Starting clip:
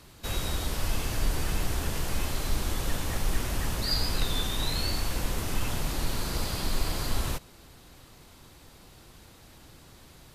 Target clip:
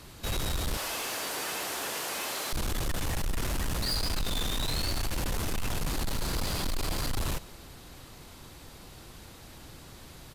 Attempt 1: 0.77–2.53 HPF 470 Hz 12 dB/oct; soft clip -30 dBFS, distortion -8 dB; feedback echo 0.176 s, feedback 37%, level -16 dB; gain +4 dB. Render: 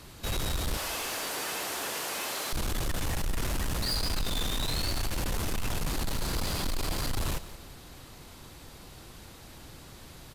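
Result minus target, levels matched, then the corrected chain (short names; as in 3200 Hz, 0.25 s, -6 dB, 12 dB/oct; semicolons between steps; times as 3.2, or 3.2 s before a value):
echo-to-direct +7.5 dB
0.77–2.53 HPF 470 Hz 12 dB/oct; soft clip -30 dBFS, distortion -8 dB; feedback echo 0.176 s, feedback 37%, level -23.5 dB; gain +4 dB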